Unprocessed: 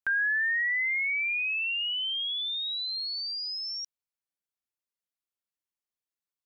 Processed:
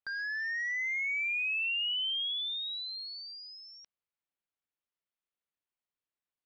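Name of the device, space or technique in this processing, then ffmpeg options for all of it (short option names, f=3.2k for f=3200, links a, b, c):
synthesiser wavefolder: -af "aeval=exprs='0.0376*(abs(mod(val(0)/0.0376+3,4)-2)-1)':c=same,lowpass=f=3.5k:w=0.5412,lowpass=f=3.5k:w=1.3066"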